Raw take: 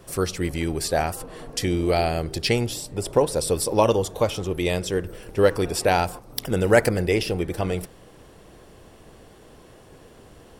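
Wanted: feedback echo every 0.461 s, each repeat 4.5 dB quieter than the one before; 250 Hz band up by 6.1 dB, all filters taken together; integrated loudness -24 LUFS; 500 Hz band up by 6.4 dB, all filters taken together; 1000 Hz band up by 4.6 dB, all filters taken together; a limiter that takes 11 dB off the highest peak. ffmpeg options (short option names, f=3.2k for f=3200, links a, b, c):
-af "equalizer=f=250:t=o:g=6.5,equalizer=f=500:t=o:g=5,equalizer=f=1k:t=o:g=3.5,alimiter=limit=-9dB:level=0:latency=1,aecho=1:1:461|922|1383|1844|2305|2766|3227|3688|4149:0.596|0.357|0.214|0.129|0.0772|0.0463|0.0278|0.0167|0.01,volume=-4dB"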